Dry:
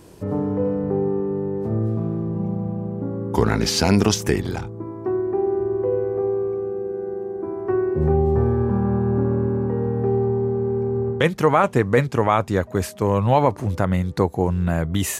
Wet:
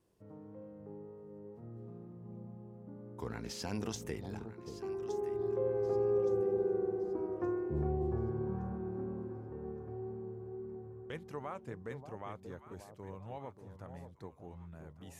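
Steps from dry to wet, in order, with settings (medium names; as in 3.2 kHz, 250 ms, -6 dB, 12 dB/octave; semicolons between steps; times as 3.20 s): Doppler pass-by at 6.45 s, 16 m/s, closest 7.2 m; vibrato 2 Hz 15 cents; echo whose repeats swap between lows and highs 584 ms, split 870 Hz, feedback 56%, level -8 dB; trim -5.5 dB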